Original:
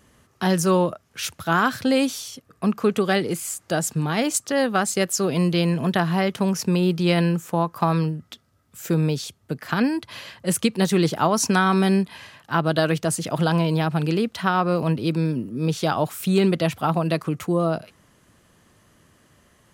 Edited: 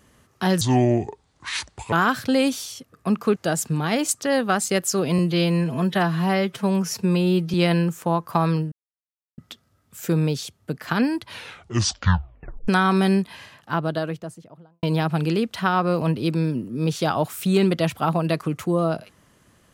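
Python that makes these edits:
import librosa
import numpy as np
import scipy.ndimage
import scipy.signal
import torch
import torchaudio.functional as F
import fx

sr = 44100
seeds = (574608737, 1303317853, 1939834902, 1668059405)

y = fx.studio_fade_out(x, sr, start_s=12.12, length_s=1.52)
y = fx.edit(y, sr, fx.speed_span(start_s=0.61, length_s=0.88, speed=0.67),
    fx.cut(start_s=2.93, length_s=0.69),
    fx.stretch_span(start_s=5.44, length_s=1.57, factor=1.5),
    fx.insert_silence(at_s=8.19, length_s=0.66),
    fx.tape_stop(start_s=10.06, length_s=1.43), tone=tone)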